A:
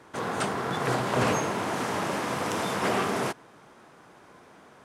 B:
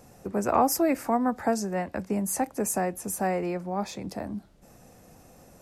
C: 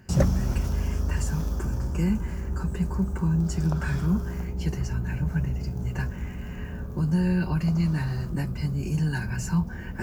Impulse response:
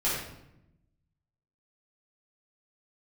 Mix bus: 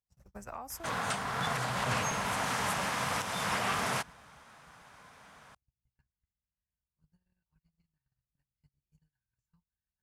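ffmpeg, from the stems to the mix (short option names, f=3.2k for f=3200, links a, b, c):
-filter_complex "[0:a]equalizer=f=350:w=7.7:g=-8.5,adelay=700,volume=1.5dB[a];[1:a]acompressor=mode=upward:threshold=-34dB:ratio=2.5,volume=-6dB,asplit=2[b][c];[2:a]adynamicequalizer=threshold=0.0126:dfrequency=190:dqfactor=3.6:tfrequency=190:tqfactor=3.6:attack=5:release=100:ratio=0.375:range=2:mode=cutabove:tftype=bell,acompressor=threshold=-26dB:ratio=10,aeval=exprs='val(0)+0.00891*(sin(2*PI*50*n/s)+sin(2*PI*2*50*n/s)/2+sin(2*PI*3*50*n/s)/3+sin(2*PI*4*50*n/s)/4+sin(2*PI*5*50*n/s)/5)':c=same,volume=-9.5dB[d];[c]apad=whole_len=441976[e];[d][e]sidechaincompress=threshold=-34dB:ratio=8:attack=16:release=477[f];[b][f]amix=inputs=2:normalize=0,agate=range=-50dB:threshold=-33dB:ratio=16:detection=peak,acompressor=threshold=-35dB:ratio=6,volume=0dB[g];[a][g]amix=inputs=2:normalize=0,equalizer=f=350:w=0.78:g=-13.5,alimiter=limit=-20.5dB:level=0:latency=1:release=289"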